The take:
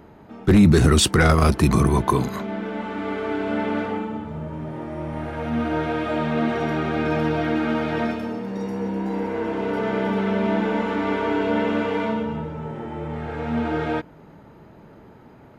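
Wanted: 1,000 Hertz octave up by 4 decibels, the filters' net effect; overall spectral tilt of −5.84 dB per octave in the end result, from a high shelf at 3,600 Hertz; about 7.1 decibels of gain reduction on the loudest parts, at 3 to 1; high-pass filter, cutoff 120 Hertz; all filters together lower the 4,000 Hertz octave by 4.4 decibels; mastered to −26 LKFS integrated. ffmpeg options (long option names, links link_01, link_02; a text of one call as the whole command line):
ffmpeg -i in.wav -af "highpass=120,equalizer=frequency=1000:width_type=o:gain=5,highshelf=frequency=3600:gain=4,equalizer=frequency=4000:width_type=o:gain=-8.5,acompressor=threshold=-20dB:ratio=3,volume=-0.5dB" out.wav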